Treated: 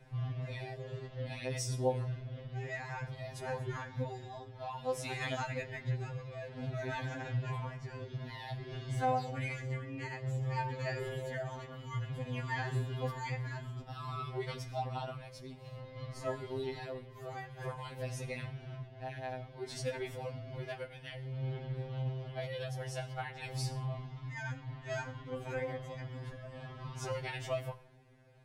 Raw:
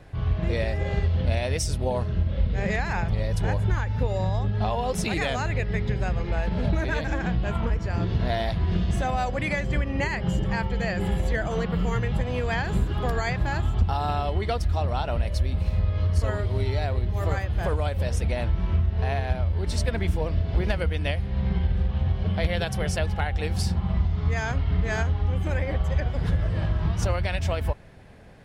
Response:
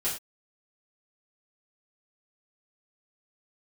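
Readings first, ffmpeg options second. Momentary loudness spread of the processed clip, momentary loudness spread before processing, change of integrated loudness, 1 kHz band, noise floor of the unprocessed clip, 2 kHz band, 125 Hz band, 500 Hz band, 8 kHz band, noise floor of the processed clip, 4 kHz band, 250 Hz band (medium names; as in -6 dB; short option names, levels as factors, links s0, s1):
9 LU, 2 LU, -13.5 dB, -10.0 dB, -31 dBFS, -11.5 dB, -14.0 dB, -10.0 dB, -9.5 dB, -52 dBFS, -11.0 dB, -15.5 dB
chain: -filter_complex "[0:a]tremolo=f=0.55:d=0.48,asplit=2[s0][s1];[1:a]atrim=start_sample=2205,asetrate=28224,aresample=44100[s2];[s1][s2]afir=irnorm=-1:irlink=0,volume=0.0891[s3];[s0][s3]amix=inputs=2:normalize=0,afftfilt=real='re*2.45*eq(mod(b,6),0)':imag='im*2.45*eq(mod(b,6),0)':win_size=2048:overlap=0.75,volume=0.422"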